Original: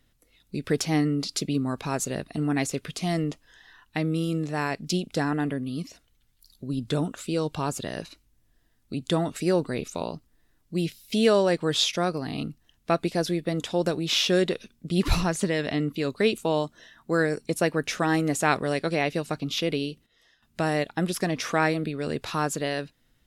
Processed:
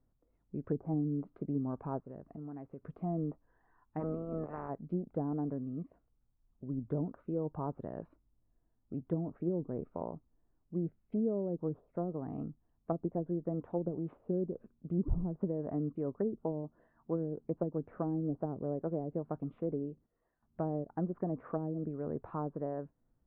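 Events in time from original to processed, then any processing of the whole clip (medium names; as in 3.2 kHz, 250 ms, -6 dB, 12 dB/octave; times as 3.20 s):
1.98–2.85 s: compression 3:1, threshold -36 dBFS
3.99–4.68 s: spectral peaks clipped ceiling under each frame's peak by 25 dB
whole clip: low-pass that closes with the level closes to 340 Hz, closed at -19.5 dBFS; low-pass 1.1 kHz 24 dB/octave; trim -8 dB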